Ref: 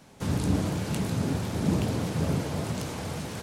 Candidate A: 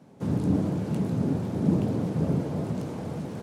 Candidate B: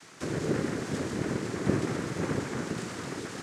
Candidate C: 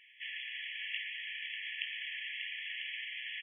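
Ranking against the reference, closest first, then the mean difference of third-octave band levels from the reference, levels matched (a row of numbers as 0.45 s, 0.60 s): B, A, C; 4.0 dB, 7.5 dB, 32.0 dB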